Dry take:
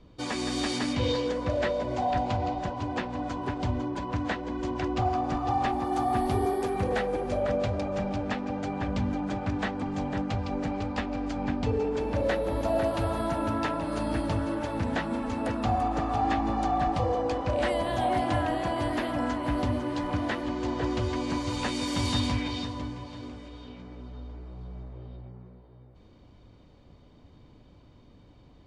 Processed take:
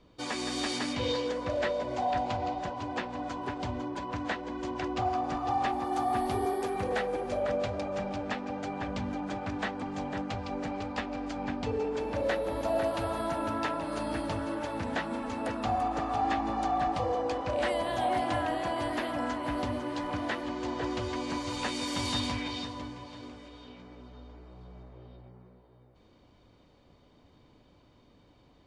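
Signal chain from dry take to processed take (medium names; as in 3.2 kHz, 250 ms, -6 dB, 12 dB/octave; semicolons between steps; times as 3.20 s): bass shelf 230 Hz -9 dB; trim -1 dB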